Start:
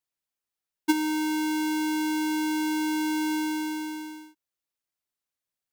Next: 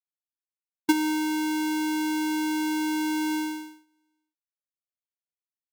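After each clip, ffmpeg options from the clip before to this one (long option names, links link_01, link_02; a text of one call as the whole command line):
ffmpeg -i in.wav -af "agate=range=-37dB:threshold=-30dB:ratio=16:detection=peak,volume=1.5dB" out.wav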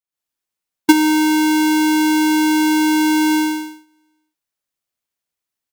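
ffmpeg -i in.wav -af "dynaudnorm=framelen=100:gausssize=3:maxgain=12dB" out.wav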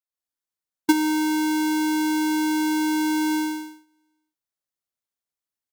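ffmpeg -i in.wav -af "equalizer=frequency=2600:width=3:gain=-4.5,volume=-7.5dB" out.wav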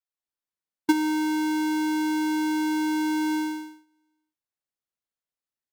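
ffmpeg -i in.wav -af "highshelf=frequency=5100:gain=-6.5,volume=-2.5dB" out.wav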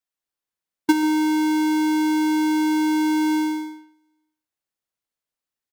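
ffmpeg -i in.wav -filter_complex "[0:a]asplit=2[link_01][link_02];[link_02]adelay=140,highpass=300,lowpass=3400,asoftclip=type=hard:threshold=-22dB,volume=-9dB[link_03];[link_01][link_03]amix=inputs=2:normalize=0,volume=3.5dB" out.wav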